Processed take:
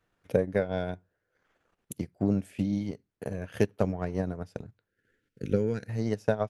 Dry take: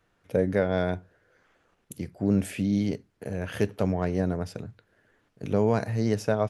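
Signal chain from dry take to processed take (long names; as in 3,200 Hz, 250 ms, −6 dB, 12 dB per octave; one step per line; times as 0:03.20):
transient designer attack +8 dB, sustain −9 dB
gain on a spectral selection 0:04.89–0:05.89, 540–1,300 Hz −16 dB
level −6 dB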